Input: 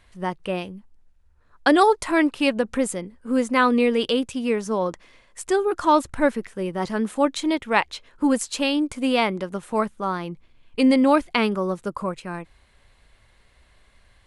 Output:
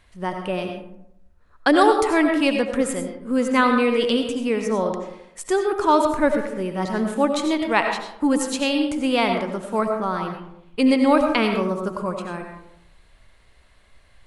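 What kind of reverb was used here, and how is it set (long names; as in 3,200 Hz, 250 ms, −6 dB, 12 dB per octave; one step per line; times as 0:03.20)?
comb and all-pass reverb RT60 0.8 s, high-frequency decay 0.45×, pre-delay 50 ms, DRR 4 dB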